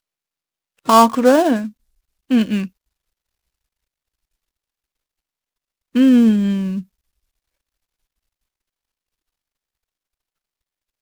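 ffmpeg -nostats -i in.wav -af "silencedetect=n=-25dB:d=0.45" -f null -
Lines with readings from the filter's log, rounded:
silence_start: 0.00
silence_end: 0.88 | silence_duration: 0.88
silence_start: 1.68
silence_end: 2.31 | silence_duration: 0.63
silence_start: 2.66
silence_end: 5.95 | silence_duration: 3.29
silence_start: 6.80
silence_end: 11.01 | silence_duration: 4.21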